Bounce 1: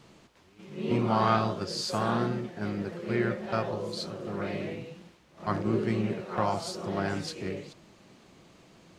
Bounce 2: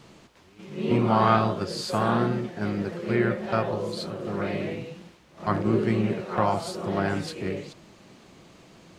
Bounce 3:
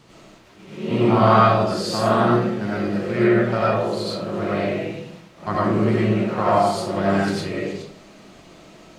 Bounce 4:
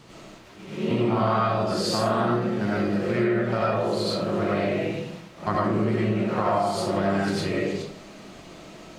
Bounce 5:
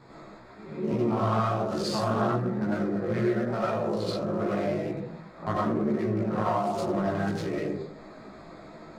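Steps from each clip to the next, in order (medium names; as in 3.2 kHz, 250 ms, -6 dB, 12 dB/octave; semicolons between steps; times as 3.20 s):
dynamic bell 5.7 kHz, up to -7 dB, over -53 dBFS, Q 1.4; trim +4.5 dB
algorithmic reverb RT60 0.61 s, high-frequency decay 0.65×, pre-delay 55 ms, DRR -6.5 dB; trim -1 dB
compression 4:1, threshold -23 dBFS, peak gain reduction 11.5 dB; trim +2 dB
local Wiener filter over 15 samples; chorus voices 2, 1.1 Hz, delay 16 ms, depth 3 ms; tape noise reduction on one side only encoder only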